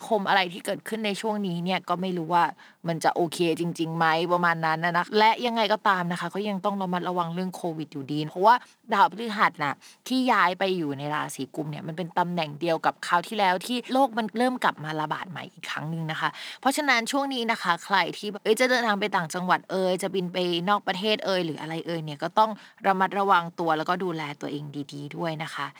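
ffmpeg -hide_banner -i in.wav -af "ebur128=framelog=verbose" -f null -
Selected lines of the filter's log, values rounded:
Integrated loudness:
  I:         -25.6 LUFS
  Threshold: -35.7 LUFS
Loudness range:
  LRA:         3.0 LU
  Threshold: -45.6 LUFS
  LRA low:   -27.0 LUFS
  LRA high:  -24.0 LUFS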